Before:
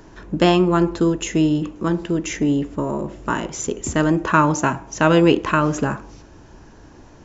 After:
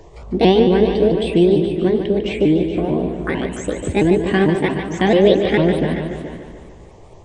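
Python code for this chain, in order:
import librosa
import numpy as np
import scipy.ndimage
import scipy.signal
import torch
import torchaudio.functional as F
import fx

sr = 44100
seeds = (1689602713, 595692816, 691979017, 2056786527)

p1 = fx.pitch_ramps(x, sr, semitones=5.5, every_ms=223)
p2 = 10.0 ** (-17.5 / 20.0) * np.tanh(p1 / 10.0 ** (-17.5 / 20.0))
p3 = p1 + (p2 * 10.0 ** (-7.5 / 20.0))
p4 = fx.env_phaser(p3, sr, low_hz=210.0, high_hz=1300.0, full_db=-20.0)
p5 = fx.high_shelf(p4, sr, hz=4700.0, db=-11.0)
p6 = p5 + fx.echo_single(p5, sr, ms=423, db=-12.5, dry=0)
p7 = fx.echo_warbled(p6, sr, ms=147, feedback_pct=59, rate_hz=2.8, cents=52, wet_db=-8.5)
y = p7 * 10.0 ** (3.0 / 20.0)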